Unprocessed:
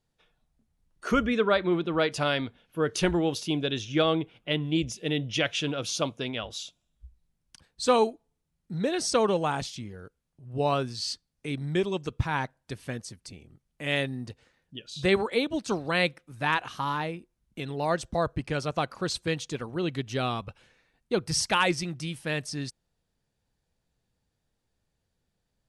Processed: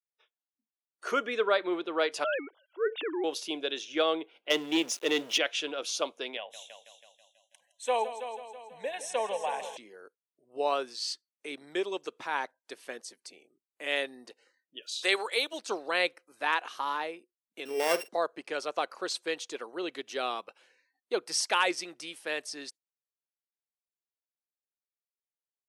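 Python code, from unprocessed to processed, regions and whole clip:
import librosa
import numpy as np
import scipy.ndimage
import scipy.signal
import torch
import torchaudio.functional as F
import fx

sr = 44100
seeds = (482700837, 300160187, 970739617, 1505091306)

y = fx.chain(x, sr, fx.sine_speech(),
    fx.transient(attack_db=-7, sustain_db=5),
    fx.air_absorb(metres=65.0), at=(2.24, 3.24))
y = fx.chain(y, sr, fx.highpass(hz=76.0, slope=24),
    fx.leveller(passes=2),
    fx.sample_gate(floor_db=-42.5), at=(4.5, 5.38))
y = fx.chain(y, sr, fx.fixed_phaser(hz=1300.0, stages=6),
    fx.echo_heads(ms=163, heads='first and second', feedback_pct=49, wet_db=-12.5), at=(6.37, 9.77))
y = fx.chain(y, sr, fx.highpass(hz=170.0, slope=6),
    fx.tilt_eq(slope=3.0), at=(14.82, 15.59))
y = fx.chain(y, sr, fx.sample_sort(block=16),
    fx.doubler(ms=47.0, db=-14.0),
    fx.small_body(hz=(220.0, 430.0), ring_ms=30, db=9), at=(17.65, 18.09))
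y = scipy.signal.sosfilt(scipy.signal.butter(4, 360.0, 'highpass', fs=sr, output='sos'), y)
y = fx.noise_reduce_blind(y, sr, reduce_db=25)
y = y * 10.0 ** (-2.0 / 20.0)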